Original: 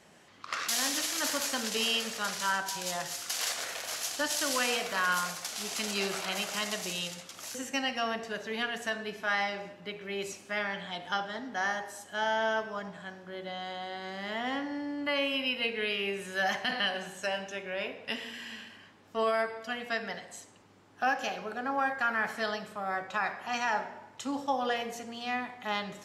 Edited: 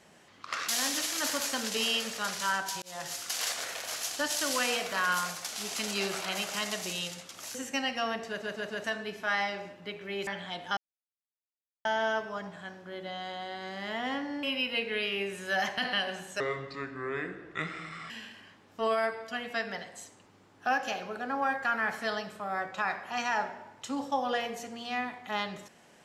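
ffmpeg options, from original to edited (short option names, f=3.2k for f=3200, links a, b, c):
-filter_complex "[0:a]asplit=12[a][b][c][d][e][f][g][h][i][j][k][l];[a]atrim=end=2.82,asetpts=PTS-STARTPTS,afade=t=out:st=2.816:d=0.004:c=hsin[m];[b]atrim=start=2.82:end=8.422,asetpts=PTS-STARTPTS,afade=t=in:d=0.27[n];[c]atrim=start=8.278:end=8.422[o];[d]atrim=start=8.278:end=8.422[p];[e]atrim=start=8.278:end=8.422[q];[f]atrim=start=8.838:end=10.272[r];[g]atrim=start=10.678:end=11.18,asetpts=PTS-STARTPTS,afade=t=out:st=0.498:d=0.004:c=hsin[s];[h]atrim=start=11.18:end=12.26,asetpts=PTS-STARTPTS,volume=0[t];[i]atrim=start=12.26:end=14.842,asetpts=PTS-STARTPTS,afade=t=in:d=0.004:c=hsin[u];[j]atrim=start=15.298:end=17.274[v];[k]atrim=start=17.27:end=18.46,asetpts=PTS-STARTPTS,asetrate=30870,aresample=44100[w];[l]atrim=start=18.456[x];[m][n]concat=n=2:v=0:a=1[y];[y][o]acrossfade=d=0.004:c1=hsin:c2=hsin[z];[z][p]acrossfade=d=0.004:c1=hsin:c2=hsin[aa];[aa][q]acrossfade=d=0.004:c1=hsin:c2=hsin[ab];[ab][r]acrossfade=d=0.004:c1=hsin:c2=hsin[ac];[s][t][u]concat=n=3:v=0:a=1[ad];[ac][ad]acrossfade=d=0.004:c1=hsin:c2=hsin[ae];[ae][v]acrossfade=d=0.004:c1=hsin:c2=hsin[af];[af][w]acrossfade=d=0.004:c1=hsin:c2=hsin[ag];[ag][x]acrossfade=d=0.004:c1=hsin:c2=hsin"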